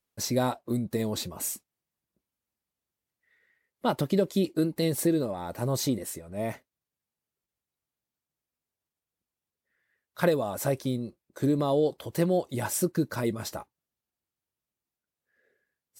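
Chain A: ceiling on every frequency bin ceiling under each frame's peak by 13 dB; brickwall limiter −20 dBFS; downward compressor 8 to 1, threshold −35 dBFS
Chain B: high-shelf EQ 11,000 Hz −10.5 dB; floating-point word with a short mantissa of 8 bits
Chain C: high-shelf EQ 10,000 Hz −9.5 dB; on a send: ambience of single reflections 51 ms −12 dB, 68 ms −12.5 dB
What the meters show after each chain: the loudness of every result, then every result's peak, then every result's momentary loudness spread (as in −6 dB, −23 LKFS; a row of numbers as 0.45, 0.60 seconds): −39.5, −29.0, −28.5 LKFS; −24.0, −11.0, −10.5 dBFS; 6, 11, 10 LU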